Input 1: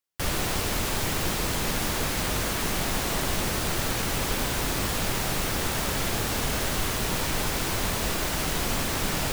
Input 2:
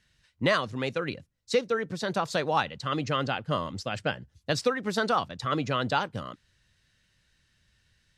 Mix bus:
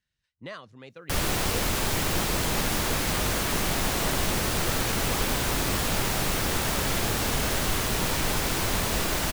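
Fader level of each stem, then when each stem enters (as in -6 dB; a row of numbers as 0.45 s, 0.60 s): +1.0 dB, -15.5 dB; 0.90 s, 0.00 s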